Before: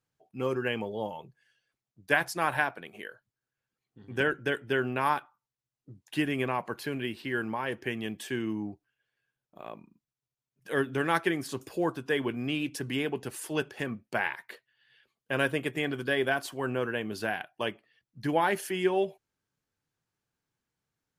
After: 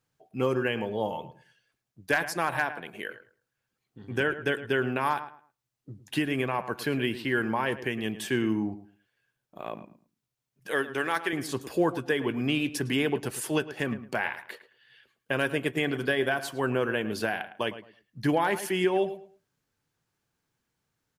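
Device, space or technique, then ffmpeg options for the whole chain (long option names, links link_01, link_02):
clipper into limiter: -filter_complex "[0:a]asettb=1/sr,asplit=3[link_01][link_02][link_03];[link_01]atrim=end=10.714[link_04];[link_02]atrim=start=10.71:end=11.33,asetpts=PTS-STARTPTS,afade=type=in:duration=0.004:curve=qsin,afade=type=out:start_time=0.616:duration=0.004:curve=qsin,highpass=frequency=570:poles=1[link_05];[link_03]atrim=start=11.326[link_06];[link_04][link_05]acrossfade=duration=0.004:curve1=hsin:curve2=qsin[link_07];[link_07][link_06]acrossfade=duration=0.004:curve1=qsin:curve2=hsin,asplit=2[link_08][link_09];[link_09]adelay=108,lowpass=frequency=2400:poles=1,volume=-13.5dB,asplit=2[link_10][link_11];[link_11]adelay=108,lowpass=frequency=2400:poles=1,volume=0.22,asplit=2[link_12][link_13];[link_13]adelay=108,lowpass=frequency=2400:poles=1,volume=0.22[link_14];[link_08][link_10][link_12][link_14]amix=inputs=4:normalize=0,asoftclip=type=hard:threshold=-14.5dB,alimiter=limit=-20.5dB:level=0:latency=1:release=423,volume=5.5dB"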